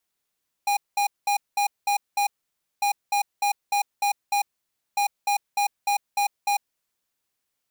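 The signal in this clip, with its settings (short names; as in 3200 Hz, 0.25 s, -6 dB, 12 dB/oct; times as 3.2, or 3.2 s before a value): beep pattern square 814 Hz, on 0.10 s, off 0.20 s, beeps 6, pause 0.55 s, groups 3, -22 dBFS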